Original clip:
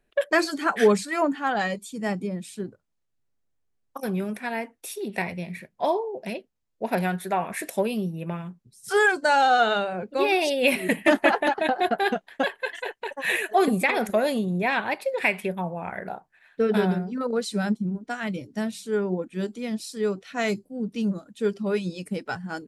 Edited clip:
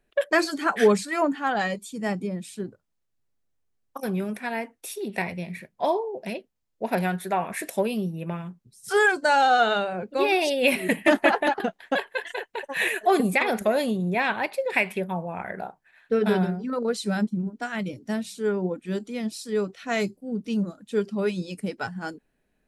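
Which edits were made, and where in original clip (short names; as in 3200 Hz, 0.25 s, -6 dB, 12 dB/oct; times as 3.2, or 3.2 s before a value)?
11.6–12.08 cut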